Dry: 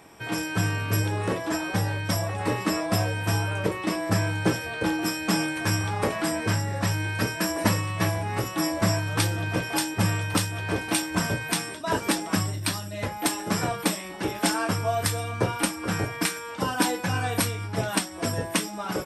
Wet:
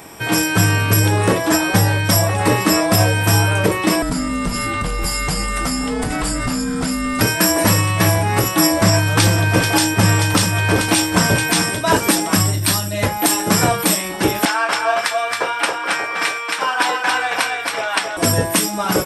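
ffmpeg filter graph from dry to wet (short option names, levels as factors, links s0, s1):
-filter_complex "[0:a]asettb=1/sr,asplit=3[s0][s1][s2];[s0]atrim=end=4.024[s3];[s1]atrim=start=4.02:end=7.21,asetpts=PTS-STARTPTS,afade=t=in:d=0.004:c=qsin,afade=t=out:st=3.186:d=0.004:c=qsin,acompressor=threshold=0.0398:ratio=12:attack=3.2:release=140:knee=1:detection=peak,afreqshift=-360[s4];[s2]atrim=start=7.206[s5];[s3][s4]acrossfade=d=0.004:c1=hsin:c2=qsin[s6];[s6][s5]acrossfade=d=0.004:c1=qsin:c2=hsin,asettb=1/sr,asplit=3[s7][s8][s9];[s7]atrim=end=8.834[s10];[s8]atrim=start=8.83:end=11.97,asetpts=PTS-STARTPTS,afade=t=in:d=0.004:c=qsin,afade=t=out:st=3.136:d=0.004:c=qsin,acrossover=split=8500[s11][s12];[s12]acompressor=threshold=0.00447:ratio=4:attack=1:release=60[s13];[s11][s13]amix=inputs=2:normalize=0,aecho=1:1:436:0.282,atrim=end_sample=138474[s14];[s9]atrim=start=11.966[s15];[s10][s14]acrossfade=d=0.004:c1=hsin:c2=qsin[s16];[s16][s15]acrossfade=d=0.004:c1=qsin:c2=hsin,asettb=1/sr,asplit=3[s17][s18][s19];[s17]atrim=end=14.454[s20];[s18]atrim=start=14.45:end=18.17,asetpts=PTS-STARTPTS,afade=t=in:d=0.004:c=qsin,afade=t=out:st=3.716:d=0.004:c=qsin,highpass=780,lowpass=2500,aemphasis=mode=production:type=cd,aecho=1:1:272:0.668,atrim=end_sample=164052[s21];[s19]atrim=start=18.166[s22];[s20][s21]acrossfade=d=0.004:c1=hsin:c2=qsin[s23];[s23][s22]acrossfade=d=0.004:c1=qsin:c2=hsin,highshelf=f=7900:g=10,alimiter=level_in=5.01:limit=0.891:release=50:level=0:latency=1,volume=0.75"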